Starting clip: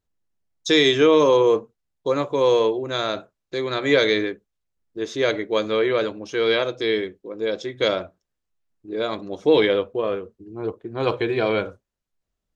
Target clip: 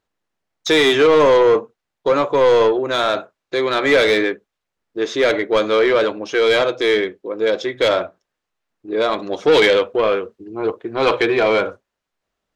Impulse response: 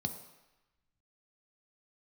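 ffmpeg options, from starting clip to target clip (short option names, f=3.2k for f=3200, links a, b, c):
-filter_complex "[0:a]asplit=2[a][b];[b]highpass=f=720:p=1,volume=19dB,asoftclip=type=tanh:threshold=-4.5dB[c];[a][c]amix=inputs=2:normalize=0,lowpass=f=2.2k:p=1,volume=-6dB,asplit=3[d][e][f];[d]afade=t=out:st=9.18:d=0.02[g];[e]adynamicequalizer=threshold=0.0282:dfrequency=1600:dqfactor=0.7:tfrequency=1600:tqfactor=0.7:attack=5:release=100:ratio=0.375:range=2.5:mode=boostabove:tftype=highshelf,afade=t=in:st=9.18:d=0.02,afade=t=out:st=11.24:d=0.02[h];[f]afade=t=in:st=11.24:d=0.02[i];[g][h][i]amix=inputs=3:normalize=0"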